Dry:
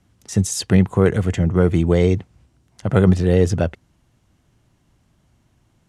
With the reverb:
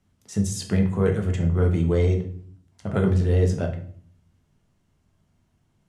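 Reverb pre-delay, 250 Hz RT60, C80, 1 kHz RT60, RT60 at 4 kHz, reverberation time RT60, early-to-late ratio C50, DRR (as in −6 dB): 4 ms, 0.80 s, 14.5 dB, 0.50 s, 0.40 s, 0.55 s, 10.0 dB, 2.0 dB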